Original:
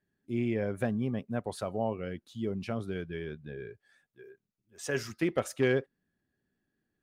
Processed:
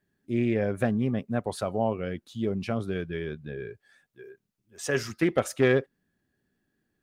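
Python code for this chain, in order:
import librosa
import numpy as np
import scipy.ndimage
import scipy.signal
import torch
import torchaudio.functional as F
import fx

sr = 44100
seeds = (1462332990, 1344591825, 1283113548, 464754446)

y = fx.doppler_dist(x, sr, depth_ms=0.11)
y = y * 10.0 ** (5.0 / 20.0)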